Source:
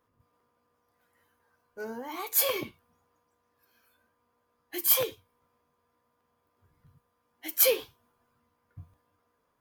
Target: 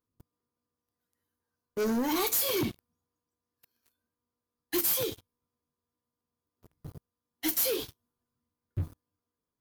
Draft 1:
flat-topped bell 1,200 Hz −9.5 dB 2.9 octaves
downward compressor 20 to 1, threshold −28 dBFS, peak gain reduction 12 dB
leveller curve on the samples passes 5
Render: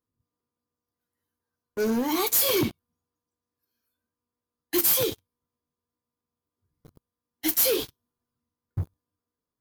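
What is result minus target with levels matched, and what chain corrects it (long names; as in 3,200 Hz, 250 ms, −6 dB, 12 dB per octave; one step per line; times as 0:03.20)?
downward compressor: peak gain reduction −6 dB
flat-topped bell 1,200 Hz −9.5 dB 2.9 octaves
downward compressor 20 to 1, threshold −34.5 dBFS, peak gain reduction 18 dB
leveller curve on the samples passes 5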